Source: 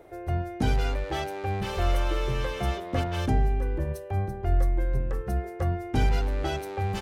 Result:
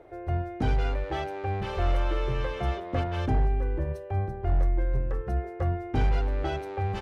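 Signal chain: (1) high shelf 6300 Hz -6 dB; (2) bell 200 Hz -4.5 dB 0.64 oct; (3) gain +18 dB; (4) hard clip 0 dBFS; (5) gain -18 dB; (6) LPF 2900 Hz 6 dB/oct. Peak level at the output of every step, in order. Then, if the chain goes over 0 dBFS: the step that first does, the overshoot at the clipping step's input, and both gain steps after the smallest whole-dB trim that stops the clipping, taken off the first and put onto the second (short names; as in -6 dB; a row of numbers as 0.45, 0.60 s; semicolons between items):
-12.5, -12.5, +5.5, 0.0, -18.0, -18.0 dBFS; step 3, 5.5 dB; step 3 +12 dB, step 5 -12 dB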